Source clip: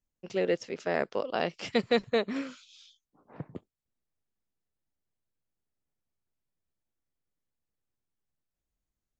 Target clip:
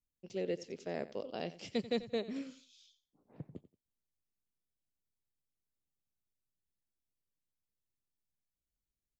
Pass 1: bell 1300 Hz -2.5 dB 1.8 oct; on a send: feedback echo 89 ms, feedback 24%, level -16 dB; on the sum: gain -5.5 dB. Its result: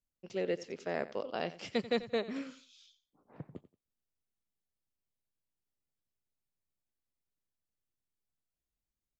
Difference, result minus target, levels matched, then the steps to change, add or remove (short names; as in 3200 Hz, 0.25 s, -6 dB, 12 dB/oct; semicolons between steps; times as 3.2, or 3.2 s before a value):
1000 Hz band +3.5 dB
change: bell 1300 Hz -13 dB 1.8 oct